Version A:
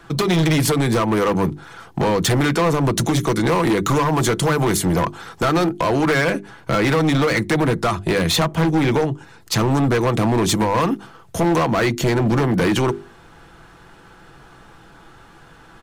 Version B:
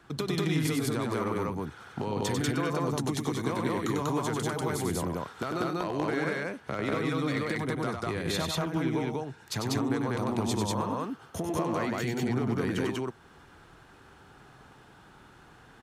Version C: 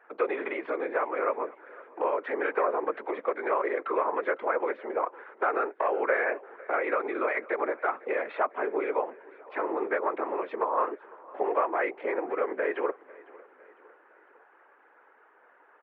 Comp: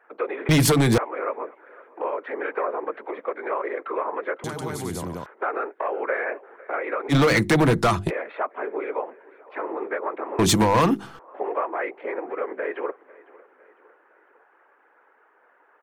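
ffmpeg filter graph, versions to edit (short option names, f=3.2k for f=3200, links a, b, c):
-filter_complex "[0:a]asplit=3[a][b][c];[2:a]asplit=5[d][e][f][g][h];[d]atrim=end=0.492[i];[a]atrim=start=0.488:end=0.982[j];[e]atrim=start=0.978:end=4.442[k];[1:a]atrim=start=4.438:end=5.262[l];[f]atrim=start=5.258:end=7.13[m];[b]atrim=start=7.09:end=8.11[n];[g]atrim=start=8.07:end=10.392[o];[c]atrim=start=10.388:end=11.192[p];[h]atrim=start=11.188[q];[i][j]acrossfade=d=0.004:c1=hsin:c2=hsin[r];[r][k]acrossfade=d=0.004:c1=hsin:c2=hsin[s];[s][l]acrossfade=d=0.004:c1=hsin:c2=hsin[t];[t][m]acrossfade=d=0.004:c1=hsin:c2=hsin[u];[u][n]acrossfade=d=0.04:c1=tri:c2=tri[v];[v][o]acrossfade=d=0.04:c1=tri:c2=tri[w];[w][p]acrossfade=d=0.004:c1=hsin:c2=hsin[x];[x][q]acrossfade=d=0.004:c1=hsin:c2=hsin"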